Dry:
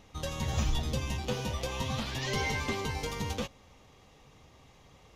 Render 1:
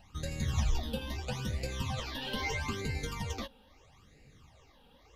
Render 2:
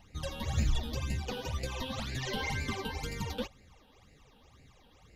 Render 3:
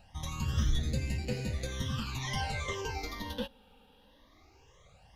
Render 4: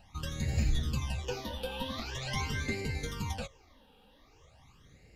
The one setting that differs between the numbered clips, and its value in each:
all-pass phaser, speed: 0.77, 2, 0.2, 0.44 Hertz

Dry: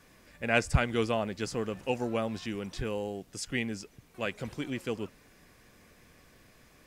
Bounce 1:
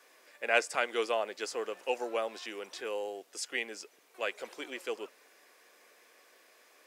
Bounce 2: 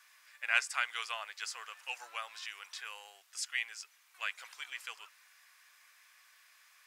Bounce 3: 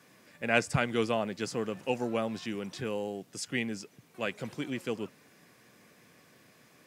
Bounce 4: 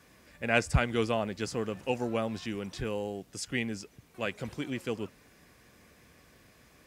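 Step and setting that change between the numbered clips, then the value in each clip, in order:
high-pass filter, corner frequency: 400, 1,100, 120, 42 Hertz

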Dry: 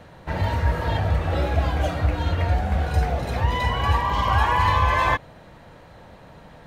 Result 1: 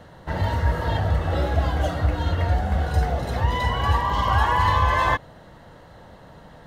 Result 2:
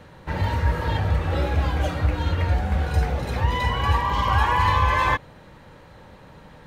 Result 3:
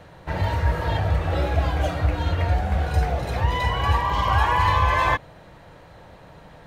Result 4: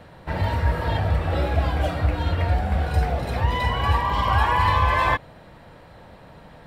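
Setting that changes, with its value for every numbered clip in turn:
notch filter, centre frequency: 2,400, 680, 230, 6,400 Hertz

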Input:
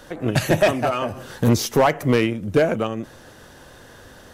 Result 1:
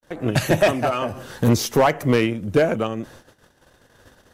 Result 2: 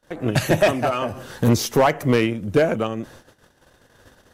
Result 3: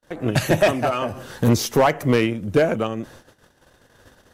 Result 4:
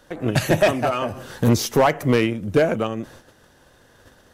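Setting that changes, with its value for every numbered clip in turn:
noise gate, range: −56, −28, −41, −9 decibels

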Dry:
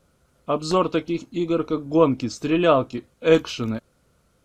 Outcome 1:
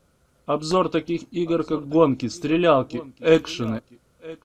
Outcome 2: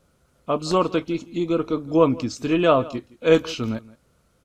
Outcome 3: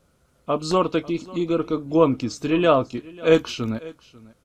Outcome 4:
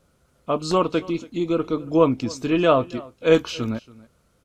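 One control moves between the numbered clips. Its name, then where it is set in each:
single-tap delay, delay time: 973, 167, 543, 280 milliseconds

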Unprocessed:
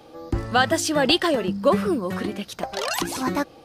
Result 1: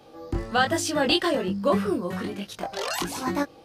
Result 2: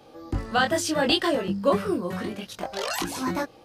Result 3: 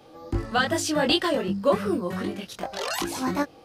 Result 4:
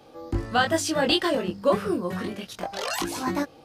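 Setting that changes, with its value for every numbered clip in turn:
chorus effect, speed: 1.2, 0.72, 2.6, 0.29 Hertz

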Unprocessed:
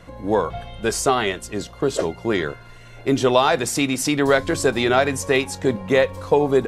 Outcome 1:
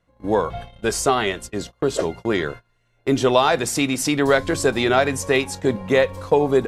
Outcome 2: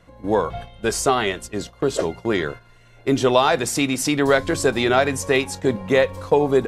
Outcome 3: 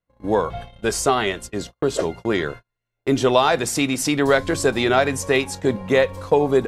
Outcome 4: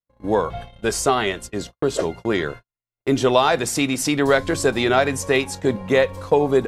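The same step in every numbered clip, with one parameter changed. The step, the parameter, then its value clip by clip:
noise gate, range: −23, −8, −40, −55 decibels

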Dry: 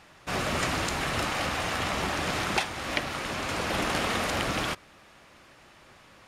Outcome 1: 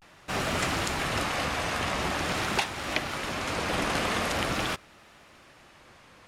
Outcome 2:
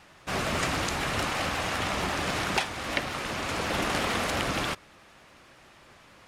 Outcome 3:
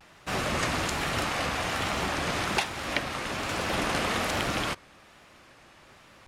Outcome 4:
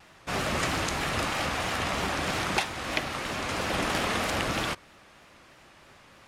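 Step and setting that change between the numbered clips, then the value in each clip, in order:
pitch vibrato, speed: 0.45, 11, 1.2, 3.1 Hertz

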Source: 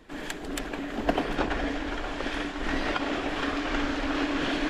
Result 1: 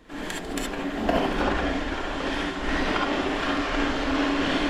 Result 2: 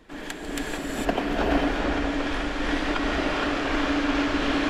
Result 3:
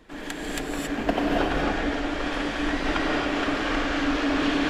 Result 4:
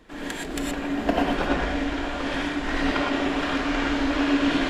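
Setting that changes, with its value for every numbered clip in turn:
reverb whose tail is shaped and stops, gate: 90, 480, 300, 140 milliseconds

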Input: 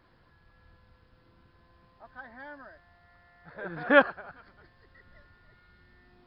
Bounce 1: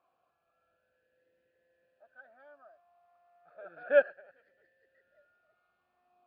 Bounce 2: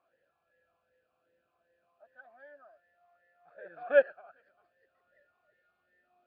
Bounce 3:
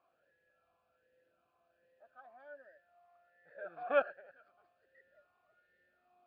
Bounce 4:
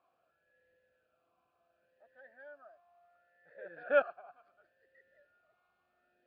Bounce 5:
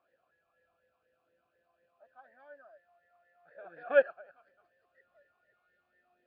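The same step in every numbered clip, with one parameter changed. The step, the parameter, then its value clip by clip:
formant filter swept between two vowels, speed: 0.33, 2.6, 1.3, 0.7, 4.1 Hertz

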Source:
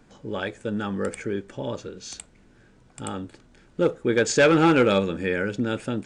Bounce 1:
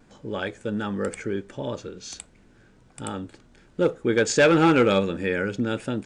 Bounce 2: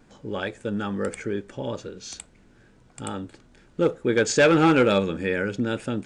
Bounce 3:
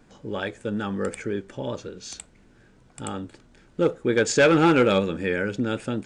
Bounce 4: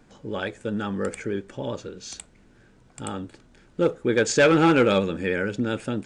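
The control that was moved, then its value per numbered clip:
pitch vibrato, speed: 1.4, 2.3, 5.4, 13 Hertz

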